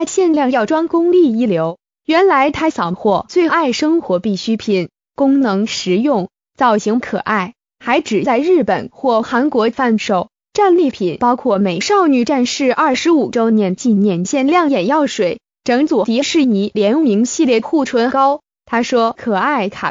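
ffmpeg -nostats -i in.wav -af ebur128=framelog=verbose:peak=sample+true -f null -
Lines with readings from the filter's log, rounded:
Integrated loudness:
  I:         -14.7 LUFS
  Threshold: -24.8 LUFS
Loudness range:
  LRA:         2.2 LU
  Threshold: -34.8 LUFS
  LRA low:   -16.0 LUFS
  LRA high:  -13.8 LUFS
Sample peak:
  Peak:       -2.0 dBFS
True peak:
  Peak:       -2.0 dBFS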